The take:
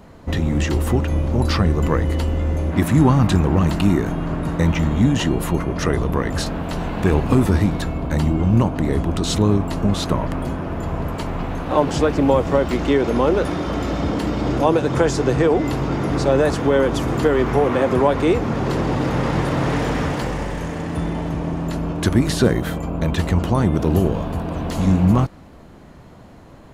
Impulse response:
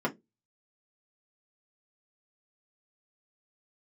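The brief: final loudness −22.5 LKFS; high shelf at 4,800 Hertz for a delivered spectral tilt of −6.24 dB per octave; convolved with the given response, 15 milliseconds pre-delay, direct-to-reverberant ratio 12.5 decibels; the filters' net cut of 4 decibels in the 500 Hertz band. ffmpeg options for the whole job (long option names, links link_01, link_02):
-filter_complex "[0:a]equalizer=frequency=500:width_type=o:gain=-5,highshelf=frequency=4800:gain=6,asplit=2[link_01][link_02];[1:a]atrim=start_sample=2205,adelay=15[link_03];[link_02][link_03]afir=irnorm=-1:irlink=0,volume=-21dB[link_04];[link_01][link_04]amix=inputs=2:normalize=0,volume=-2dB"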